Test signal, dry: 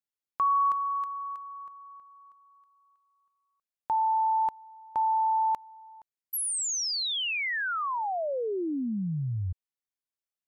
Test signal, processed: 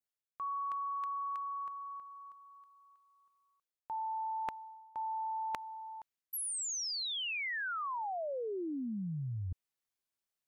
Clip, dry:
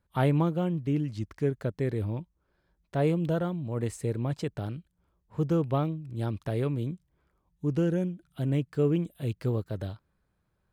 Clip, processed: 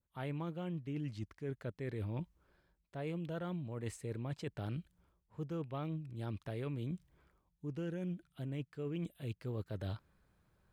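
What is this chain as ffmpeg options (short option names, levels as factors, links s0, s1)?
-af "adynamicequalizer=threshold=0.00501:dfrequency=2400:dqfactor=0.78:tfrequency=2400:tqfactor=0.78:attack=5:release=100:ratio=0.375:range=3.5:mode=boostabove:tftype=bell,areverse,acompressor=threshold=0.0126:ratio=16:attack=6.7:release=714:knee=6:detection=peak,areverse,volume=1.33"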